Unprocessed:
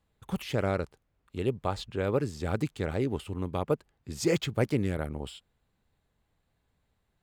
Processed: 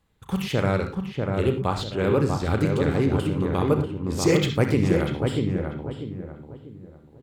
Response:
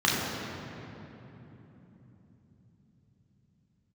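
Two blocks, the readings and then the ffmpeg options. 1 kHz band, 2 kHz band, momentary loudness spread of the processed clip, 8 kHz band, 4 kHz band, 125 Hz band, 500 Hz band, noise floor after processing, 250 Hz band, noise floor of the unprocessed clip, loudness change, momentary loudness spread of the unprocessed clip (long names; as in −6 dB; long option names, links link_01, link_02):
+7.5 dB, +7.5 dB, 13 LU, +6.0 dB, +7.0 dB, +9.5 dB, +7.0 dB, −52 dBFS, +9.0 dB, −77 dBFS, +7.5 dB, 11 LU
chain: -filter_complex "[0:a]equalizer=frequency=640:width_type=o:width=0.29:gain=-4,asplit=2[link_01][link_02];[link_02]adelay=642,lowpass=frequency=1300:poles=1,volume=-3dB,asplit=2[link_03][link_04];[link_04]adelay=642,lowpass=frequency=1300:poles=1,volume=0.36,asplit=2[link_05][link_06];[link_06]adelay=642,lowpass=frequency=1300:poles=1,volume=0.36,asplit=2[link_07][link_08];[link_08]adelay=642,lowpass=frequency=1300:poles=1,volume=0.36,asplit=2[link_09][link_10];[link_10]adelay=642,lowpass=frequency=1300:poles=1,volume=0.36[link_11];[link_01][link_03][link_05][link_07][link_09][link_11]amix=inputs=6:normalize=0,asplit=2[link_12][link_13];[1:a]atrim=start_sample=2205,atrim=end_sample=3969,adelay=33[link_14];[link_13][link_14]afir=irnorm=-1:irlink=0,volume=-18dB[link_15];[link_12][link_15]amix=inputs=2:normalize=0,volume=5.5dB" -ar 48000 -c:a libopus -b:a 256k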